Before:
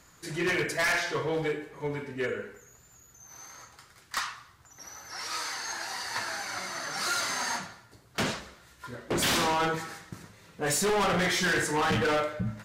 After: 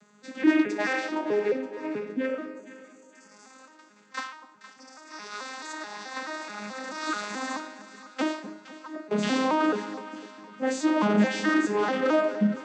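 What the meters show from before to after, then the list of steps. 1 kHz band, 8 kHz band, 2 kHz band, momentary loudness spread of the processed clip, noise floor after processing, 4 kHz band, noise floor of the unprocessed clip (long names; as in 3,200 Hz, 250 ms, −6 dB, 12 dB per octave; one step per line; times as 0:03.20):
0.0 dB, −9.5 dB, −2.0 dB, 19 LU, −56 dBFS, −6.0 dB, −58 dBFS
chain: vocoder with an arpeggio as carrier major triad, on G#3, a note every 216 ms
on a send: echo with a time of its own for lows and highs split 1,000 Hz, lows 250 ms, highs 466 ms, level −14 dB
on the sum: level +3.5 dB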